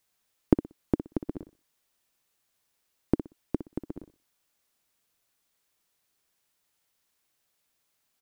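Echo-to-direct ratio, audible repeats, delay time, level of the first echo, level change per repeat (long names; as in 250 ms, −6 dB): −12.0 dB, 2, 61 ms, −12.0 dB, −13.5 dB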